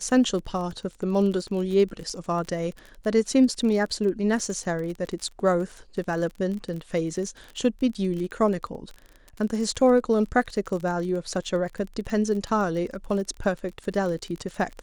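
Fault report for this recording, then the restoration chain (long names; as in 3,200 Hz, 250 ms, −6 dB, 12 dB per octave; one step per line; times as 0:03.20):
surface crackle 35 per second −32 dBFS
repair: click removal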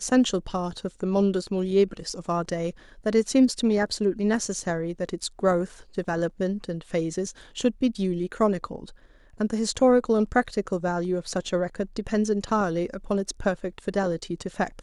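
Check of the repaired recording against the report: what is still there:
none of them is left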